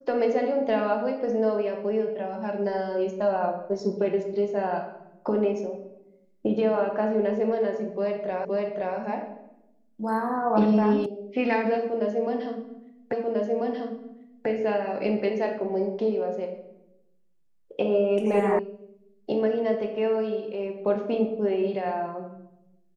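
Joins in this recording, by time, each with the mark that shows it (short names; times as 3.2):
8.45 repeat of the last 0.52 s
11.06 sound cut off
13.13 repeat of the last 1.34 s
18.59 sound cut off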